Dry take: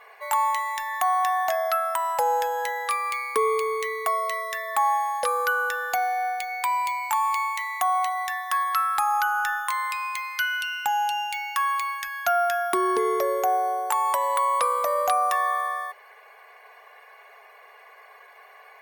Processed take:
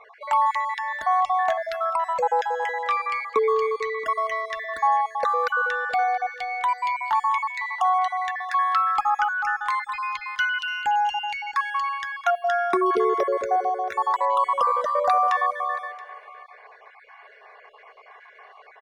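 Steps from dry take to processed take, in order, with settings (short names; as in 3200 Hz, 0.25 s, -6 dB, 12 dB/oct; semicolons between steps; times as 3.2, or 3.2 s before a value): random spectral dropouts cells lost 29%; air absorption 150 m; notch 2600 Hz, Q 25; echo 0.676 s -18.5 dB; gain +3.5 dB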